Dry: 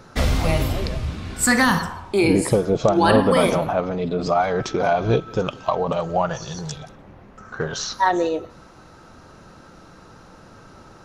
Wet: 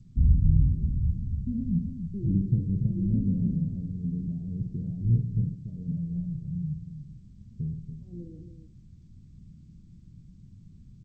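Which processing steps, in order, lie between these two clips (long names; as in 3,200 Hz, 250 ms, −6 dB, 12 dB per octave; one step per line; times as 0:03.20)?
inverse Chebyshev low-pass filter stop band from 810 Hz, stop band 70 dB
multi-tap delay 52/140/286 ms −6.5/−13.5/−8.5 dB
G.722 64 kbit/s 16,000 Hz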